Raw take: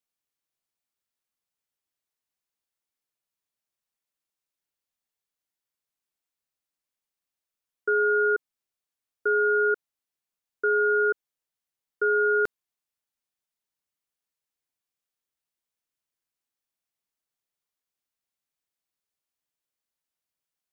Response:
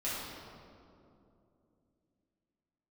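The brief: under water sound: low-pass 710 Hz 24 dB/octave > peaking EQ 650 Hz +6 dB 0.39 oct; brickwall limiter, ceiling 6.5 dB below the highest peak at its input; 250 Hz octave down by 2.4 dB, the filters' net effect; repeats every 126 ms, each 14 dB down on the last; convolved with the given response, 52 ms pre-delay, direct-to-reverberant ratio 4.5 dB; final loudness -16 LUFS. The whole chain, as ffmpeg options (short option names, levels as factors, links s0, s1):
-filter_complex "[0:a]equalizer=f=250:t=o:g=-8.5,alimiter=limit=0.0668:level=0:latency=1,aecho=1:1:126|252:0.2|0.0399,asplit=2[s0][s1];[1:a]atrim=start_sample=2205,adelay=52[s2];[s1][s2]afir=irnorm=-1:irlink=0,volume=0.316[s3];[s0][s3]amix=inputs=2:normalize=0,lowpass=f=710:w=0.5412,lowpass=f=710:w=1.3066,equalizer=f=650:t=o:w=0.39:g=6,volume=7.94"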